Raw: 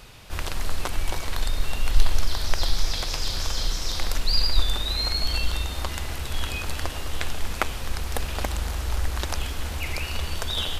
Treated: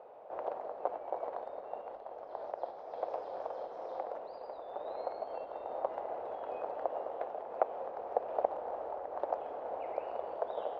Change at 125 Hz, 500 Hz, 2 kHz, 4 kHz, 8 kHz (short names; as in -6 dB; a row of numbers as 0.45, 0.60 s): under -40 dB, +2.5 dB, -23.0 dB, under -35 dB, under -40 dB